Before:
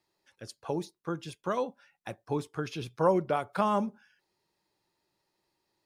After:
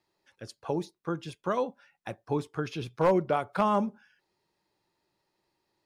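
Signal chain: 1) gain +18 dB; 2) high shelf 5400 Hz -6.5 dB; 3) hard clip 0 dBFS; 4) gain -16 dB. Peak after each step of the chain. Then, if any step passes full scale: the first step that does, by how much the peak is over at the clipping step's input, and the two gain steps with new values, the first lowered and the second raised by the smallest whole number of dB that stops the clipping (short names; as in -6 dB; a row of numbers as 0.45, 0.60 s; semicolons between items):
+6.0, +6.0, 0.0, -16.0 dBFS; step 1, 6.0 dB; step 1 +12 dB, step 4 -10 dB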